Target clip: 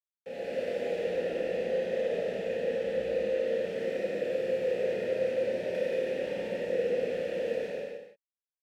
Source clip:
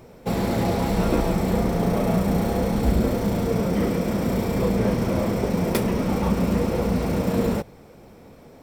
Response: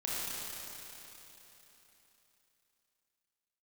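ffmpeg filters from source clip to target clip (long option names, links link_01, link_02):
-filter_complex "[0:a]asettb=1/sr,asplit=3[link_01][link_02][link_03];[link_01]atrim=end=0.944[link_04];[link_02]atrim=start=0.94:end=3.47,asetpts=PTS-STARTPTS,afade=type=in:duration=0.004:curve=qsin,afade=type=out:start_time=2.526:duration=0.004:curve=qsin,highshelf=frequency=3600:gain=-11.5[link_05];[link_03]atrim=start=3.466[link_06];[link_04][link_05]acrossfade=duration=0.004:curve1=hsin:curve2=qsin[link_07];[link_07][link_06]acrossfade=duration=0.004:curve1=qsin:curve2=hsin,acrusher=bits=4:mix=0:aa=0.000001,asplit=3[link_08][link_09][link_10];[link_08]bandpass=frequency=530:width_type=q:width=8,volume=0dB[link_11];[link_09]bandpass=frequency=1840:width_type=q:width=8,volume=-6dB[link_12];[link_10]bandpass=frequency=2480:width_type=q:width=8,volume=-9dB[link_13];[link_11][link_12][link_13]amix=inputs=3:normalize=0,aecho=1:1:107.9|139.9|174.9:0.251|0.251|0.398[link_14];[1:a]atrim=start_sample=2205,afade=type=out:start_time=0.41:duration=0.01,atrim=end_sample=18522[link_15];[link_14][link_15]afir=irnorm=-1:irlink=0,volume=-3.5dB"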